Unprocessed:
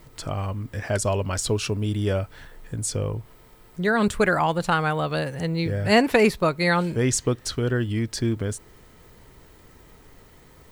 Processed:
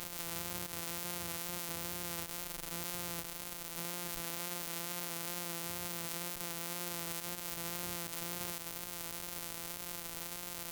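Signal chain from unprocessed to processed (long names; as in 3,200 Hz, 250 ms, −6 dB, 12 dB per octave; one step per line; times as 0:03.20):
samples sorted by size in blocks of 256 samples
spectral tilt +3 dB per octave
notch filter 1,700 Hz, Q 28
tape wow and flutter 28 cents
brickwall limiter −28.5 dBFS, peak gain reduction 35.5 dB
high-shelf EQ 8,200 Hz +7 dB
level +6 dB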